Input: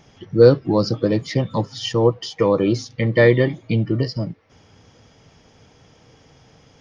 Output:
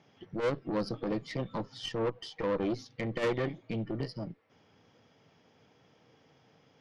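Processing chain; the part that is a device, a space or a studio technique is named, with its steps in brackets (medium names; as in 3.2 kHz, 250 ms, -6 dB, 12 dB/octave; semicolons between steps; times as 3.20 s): valve radio (band-pass 150–4200 Hz; valve stage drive 18 dB, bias 0.65; transformer saturation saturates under 150 Hz); trim -7 dB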